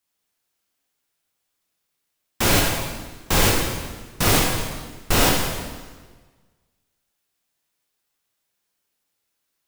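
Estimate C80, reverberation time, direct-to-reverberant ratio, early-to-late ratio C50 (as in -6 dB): 3.5 dB, 1.4 s, -1.5 dB, 1.5 dB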